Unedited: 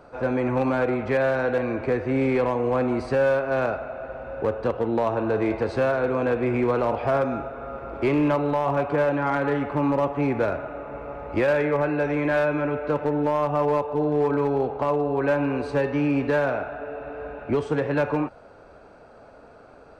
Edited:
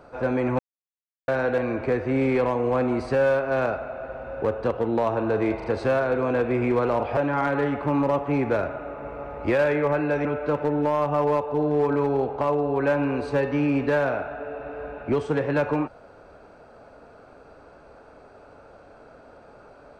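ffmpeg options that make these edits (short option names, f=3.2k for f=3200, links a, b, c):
-filter_complex "[0:a]asplit=7[a][b][c][d][e][f][g];[a]atrim=end=0.59,asetpts=PTS-STARTPTS,afade=t=out:st=0.586:d=0.004:c=hsin[h];[b]atrim=start=0.59:end=1.28,asetpts=PTS-STARTPTS,volume=0[i];[c]atrim=start=1.28:end=5.602,asetpts=PTS-STARTPTS,afade=t=in:d=0.004:c=hsin[j];[d]atrim=start=5.558:end=5.602[k];[e]atrim=start=5.558:end=7.092[l];[f]atrim=start=9.058:end=12.142[m];[g]atrim=start=12.658[n];[h][i][j]concat=n=3:v=0:a=1[o];[o][k]acrossfade=d=0.004:c1=hsin:c2=hsin[p];[p][l]acrossfade=d=0.004:c1=hsin:c2=hsin[q];[q][m]acrossfade=d=0.004:c1=hsin:c2=hsin[r];[r][n]acrossfade=d=0.004:c1=hsin:c2=hsin"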